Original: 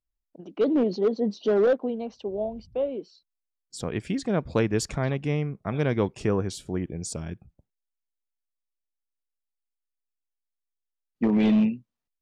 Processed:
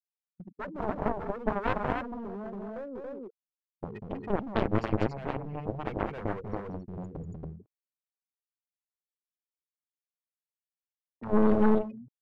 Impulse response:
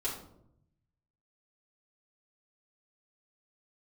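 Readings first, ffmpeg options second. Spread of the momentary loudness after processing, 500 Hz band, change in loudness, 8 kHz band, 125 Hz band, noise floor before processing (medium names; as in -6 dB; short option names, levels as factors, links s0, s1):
17 LU, -6.5 dB, -5.5 dB, under -25 dB, -6.0 dB, -84 dBFS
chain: -filter_complex "[0:a]equalizer=f=100:t=o:w=0.33:g=6,equalizer=f=200:t=o:w=0.33:g=6,equalizer=f=315:t=o:w=0.33:g=-8,equalizer=f=3150:t=o:w=0.33:g=5,equalizer=f=8000:t=o:w=0.33:g=-10,afftfilt=real='re*gte(hypot(re,im),0.0562)':imag='im*gte(hypot(re,im),0.0562)':win_size=1024:overlap=0.75,agate=range=0.0447:threshold=0.00501:ratio=16:detection=peak,asplit=2[s0][s1];[s1]acompressor=threshold=0.0251:ratio=10,volume=0.708[s2];[s0][s2]amix=inputs=2:normalize=0,acrossover=split=440[s3][s4];[s3]aeval=exprs='val(0)*(1-1/2+1/2*cos(2*PI*2.1*n/s))':c=same[s5];[s4]aeval=exprs='val(0)*(1-1/2-1/2*cos(2*PI*2.1*n/s))':c=same[s6];[s5][s6]amix=inputs=2:normalize=0,aeval=exprs='clip(val(0),-1,0.0168)':c=same,areverse,acompressor=mode=upward:threshold=0.00398:ratio=2.5,areverse,highshelf=f=2800:g=-9.5,aecho=1:1:192.4|279.9:0.562|0.794,aeval=exprs='0.282*(cos(1*acos(clip(val(0)/0.282,-1,1)))-cos(1*PI/2))+0.0794*(cos(7*acos(clip(val(0)/0.282,-1,1)))-cos(7*PI/2))':c=same,volume=0.794"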